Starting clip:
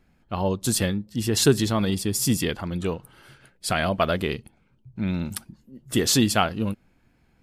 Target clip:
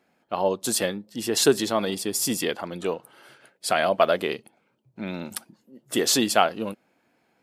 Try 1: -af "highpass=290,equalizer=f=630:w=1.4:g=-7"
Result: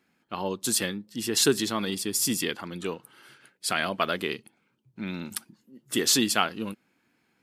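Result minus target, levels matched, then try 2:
500 Hz band -5.0 dB
-af "highpass=290,equalizer=f=630:w=1.4:g=5"

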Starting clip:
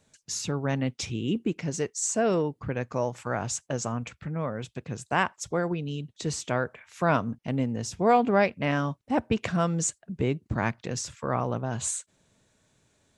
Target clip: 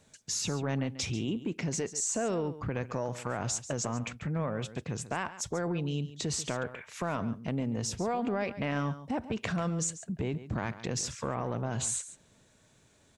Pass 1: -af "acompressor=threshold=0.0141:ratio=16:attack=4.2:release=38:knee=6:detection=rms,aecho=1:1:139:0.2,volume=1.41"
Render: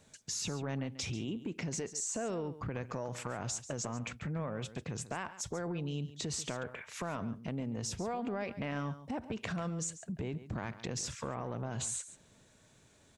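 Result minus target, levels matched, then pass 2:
compression: peak gain reduction +5.5 dB
-af "acompressor=threshold=0.0282:ratio=16:attack=4.2:release=38:knee=6:detection=rms,aecho=1:1:139:0.2,volume=1.41"

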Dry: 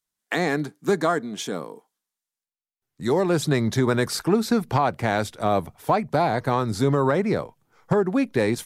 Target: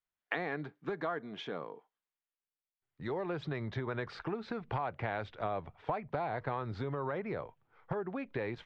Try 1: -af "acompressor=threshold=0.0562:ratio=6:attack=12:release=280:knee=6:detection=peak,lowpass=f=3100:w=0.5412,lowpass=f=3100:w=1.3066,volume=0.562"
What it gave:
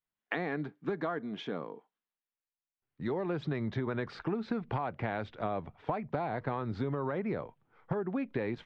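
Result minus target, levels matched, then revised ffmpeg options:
250 Hz band +3.5 dB
-af "acompressor=threshold=0.0562:ratio=6:attack=12:release=280:knee=6:detection=peak,lowpass=f=3100:w=0.5412,lowpass=f=3100:w=1.3066,equalizer=f=230:w=1.1:g=-7.5,volume=0.562"

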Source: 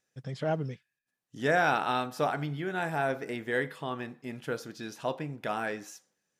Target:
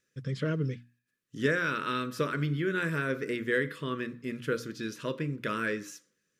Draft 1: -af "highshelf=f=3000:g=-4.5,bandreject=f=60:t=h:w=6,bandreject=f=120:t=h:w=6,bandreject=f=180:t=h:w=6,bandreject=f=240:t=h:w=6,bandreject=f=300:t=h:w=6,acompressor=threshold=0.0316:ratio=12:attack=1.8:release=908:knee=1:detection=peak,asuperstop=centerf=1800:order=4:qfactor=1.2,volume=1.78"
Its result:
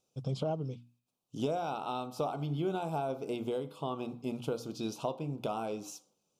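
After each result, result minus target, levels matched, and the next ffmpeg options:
2 kHz band -15.5 dB; compression: peak gain reduction +7.5 dB
-af "highshelf=f=3000:g=-4.5,bandreject=f=60:t=h:w=6,bandreject=f=120:t=h:w=6,bandreject=f=180:t=h:w=6,bandreject=f=240:t=h:w=6,bandreject=f=300:t=h:w=6,acompressor=threshold=0.0316:ratio=12:attack=1.8:release=908:knee=1:detection=peak,asuperstop=centerf=770:order=4:qfactor=1.2,volume=1.78"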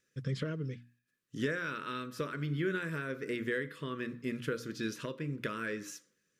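compression: peak gain reduction +7.5 dB
-af "highshelf=f=3000:g=-4.5,bandreject=f=60:t=h:w=6,bandreject=f=120:t=h:w=6,bandreject=f=180:t=h:w=6,bandreject=f=240:t=h:w=6,bandreject=f=300:t=h:w=6,acompressor=threshold=0.0794:ratio=12:attack=1.8:release=908:knee=1:detection=peak,asuperstop=centerf=770:order=4:qfactor=1.2,volume=1.78"

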